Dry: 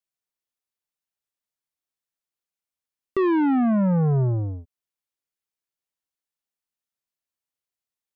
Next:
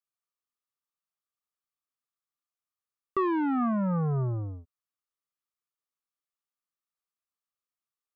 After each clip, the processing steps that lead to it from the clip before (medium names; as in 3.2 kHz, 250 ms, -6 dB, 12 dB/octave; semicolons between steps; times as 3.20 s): peaking EQ 1.2 kHz +14.5 dB 0.3 oct; trim -7.5 dB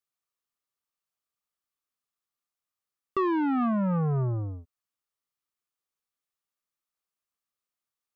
saturation -20 dBFS, distortion -27 dB; trim +2 dB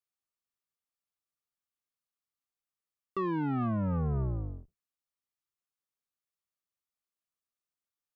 octave divider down 1 oct, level -1 dB; trim -6.5 dB